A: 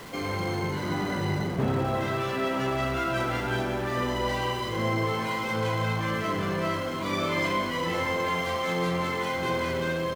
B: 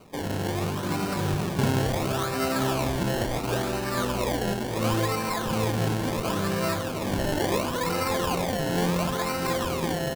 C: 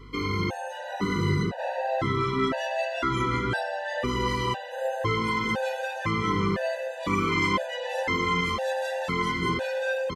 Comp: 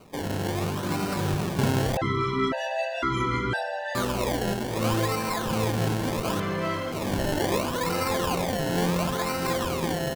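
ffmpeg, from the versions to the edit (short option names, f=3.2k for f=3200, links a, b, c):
-filter_complex "[1:a]asplit=3[a][b][c];[a]atrim=end=1.972[d];[2:a]atrim=start=1.968:end=3.952[e];[b]atrim=start=3.948:end=6.402[f];[0:a]atrim=start=6.398:end=6.922[g];[c]atrim=start=6.918[h];[d][e]acrossfade=d=0.004:c1=hsin:c2=hsin[i];[i][f]acrossfade=d=0.004:c1=hsin:c2=hsin[j];[j][g]acrossfade=d=0.004:c1=hsin:c2=hsin[k];[k][h]acrossfade=d=0.004:c1=hsin:c2=hsin"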